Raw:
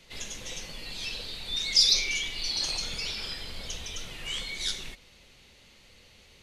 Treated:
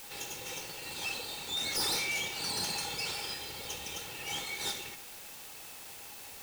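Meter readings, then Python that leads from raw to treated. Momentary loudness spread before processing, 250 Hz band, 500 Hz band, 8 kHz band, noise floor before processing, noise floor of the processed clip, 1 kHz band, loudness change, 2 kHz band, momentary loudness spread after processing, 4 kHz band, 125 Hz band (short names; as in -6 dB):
17 LU, +0.5 dB, +2.5 dB, -3.0 dB, -57 dBFS, -48 dBFS, +7.0 dB, -6.5 dB, -1.5 dB, 15 LU, -7.5 dB, -3.5 dB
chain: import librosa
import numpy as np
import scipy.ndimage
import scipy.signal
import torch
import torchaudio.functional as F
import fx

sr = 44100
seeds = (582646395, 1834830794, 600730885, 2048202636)

p1 = fx.lower_of_two(x, sr, delay_ms=2.2)
p2 = scipy.signal.sosfilt(scipy.signal.butter(2, 160.0, 'highpass', fs=sr, output='sos'), p1)
p3 = fx.low_shelf(p2, sr, hz=300.0, db=7.5)
p4 = fx.quant_dither(p3, sr, seeds[0], bits=6, dither='triangular')
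p5 = p3 + (p4 * 10.0 ** (-7.5 / 20.0))
p6 = fx.small_body(p5, sr, hz=(810.0, 2600.0), ring_ms=45, db=10)
p7 = np.clip(10.0 ** (25.0 / 20.0) * p6, -1.0, 1.0) / 10.0 ** (25.0 / 20.0)
y = p7 * 10.0 ** (-4.5 / 20.0)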